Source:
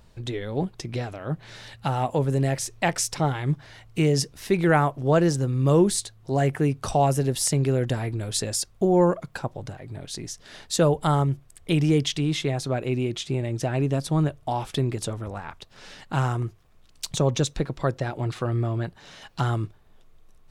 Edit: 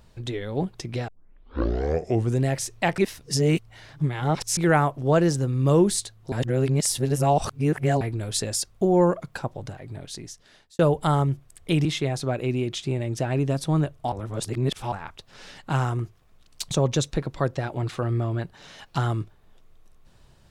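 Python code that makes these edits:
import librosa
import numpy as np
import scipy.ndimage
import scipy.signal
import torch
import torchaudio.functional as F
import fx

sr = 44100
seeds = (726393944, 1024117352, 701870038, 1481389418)

y = fx.edit(x, sr, fx.tape_start(start_s=1.08, length_s=1.37),
    fx.reverse_span(start_s=2.98, length_s=1.59),
    fx.reverse_span(start_s=6.32, length_s=1.69),
    fx.fade_out_span(start_s=9.93, length_s=0.86),
    fx.cut(start_s=11.85, length_s=0.43),
    fx.reverse_span(start_s=14.55, length_s=0.8), tone=tone)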